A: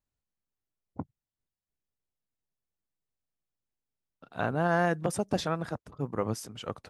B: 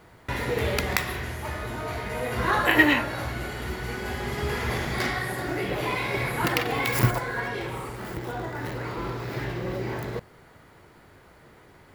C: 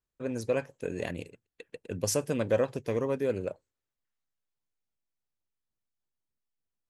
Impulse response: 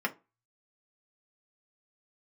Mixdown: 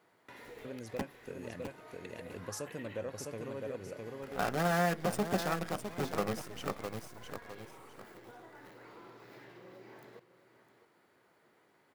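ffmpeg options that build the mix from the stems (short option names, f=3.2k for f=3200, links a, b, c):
-filter_complex "[0:a]acrusher=bits=6:dc=4:mix=0:aa=0.000001,volume=2dB,asplit=3[a][b][c];[b]volume=-9.5dB[d];[c]volume=-7.5dB[e];[1:a]alimiter=limit=-11.5dB:level=0:latency=1:release=334,acompressor=threshold=-38dB:ratio=2,highpass=230,volume=-14.5dB,asplit=2[f][g];[g]volume=-13.5dB[h];[2:a]acompressor=mode=upward:threshold=-30dB:ratio=2.5,adelay=450,volume=-9dB,asplit=2[i][j];[j]volume=-3.5dB[k];[3:a]atrim=start_sample=2205[l];[d][l]afir=irnorm=-1:irlink=0[m];[e][h][k]amix=inputs=3:normalize=0,aecho=0:1:657|1314|1971|2628:1|0.23|0.0529|0.0122[n];[a][f][i][m][n]amix=inputs=5:normalize=0,acompressor=threshold=-44dB:ratio=1.5"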